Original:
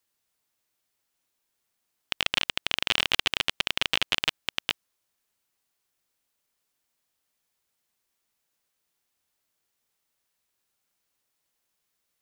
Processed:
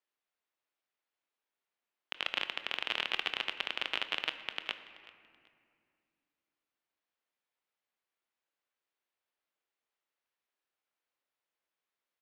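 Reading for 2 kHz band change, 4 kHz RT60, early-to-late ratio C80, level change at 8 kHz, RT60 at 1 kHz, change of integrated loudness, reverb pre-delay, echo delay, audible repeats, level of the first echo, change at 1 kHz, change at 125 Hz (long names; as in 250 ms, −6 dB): −7.0 dB, 1.6 s, 11.5 dB, −19.0 dB, 2.1 s, −8.5 dB, 22 ms, 381 ms, 2, −20.0 dB, −6.0 dB, −18.5 dB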